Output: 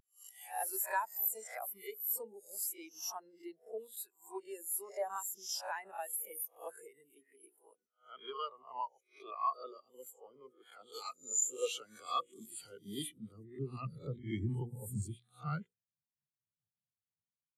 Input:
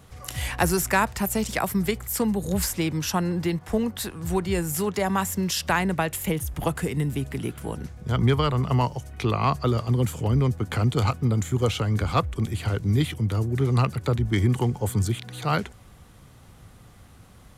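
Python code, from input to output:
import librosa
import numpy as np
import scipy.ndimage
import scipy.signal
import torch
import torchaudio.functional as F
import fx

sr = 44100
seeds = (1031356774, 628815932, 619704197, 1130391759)

y = fx.spec_swells(x, sr, rise_s=0.63)
y = scipy.signal.lfilter([1.0, -0.8], [1.0], y)
y = fx.hum_notches(y, sr, base_hz=60, count=9)
y = fx.high_shelf(y, sr, hz=3100.0, db=10.5, at=(10.93, 13.08), fade=0.02)
y = 10.0 ** (-26.0 / 20.0) * np.tanh(y / 10.0 ** (-26.0 / 20.0))
y = fx.filter_sweep_highpass(y, sr, from_hz=470.0, to_hz=130.0, start_s=10.86, end_s=14.56, q=0.95)
y = fx.spectral_expand(y, sr, expansion=2.5)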